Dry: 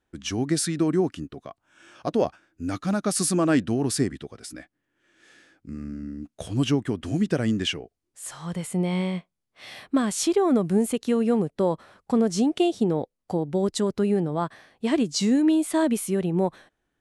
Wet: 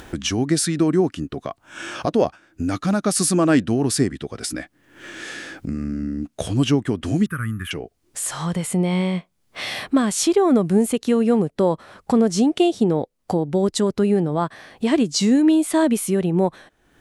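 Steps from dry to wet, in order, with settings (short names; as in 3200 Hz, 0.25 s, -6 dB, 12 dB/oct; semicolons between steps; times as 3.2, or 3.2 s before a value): upward compressor, threshold -23 dBFS; 7.26–7.71 EQ curve 110 Hz 0 dB, 760 Hz -30 dB, 1200 Hz +8 dB, 5100 Hz -27 dB, 7400 Hz -16 dB, 11000 Hz +14 dB; gain +4.5 dB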